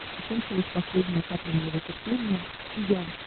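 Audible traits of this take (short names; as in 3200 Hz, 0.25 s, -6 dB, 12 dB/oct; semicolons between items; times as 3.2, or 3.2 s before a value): a buzz of ramps at a fixed pitch in blocks of 8 samples; chopped level 5.2 Hz, depth 60%, duty 25%; a quantiser's noise floor 6-bit, dither triangular; Opus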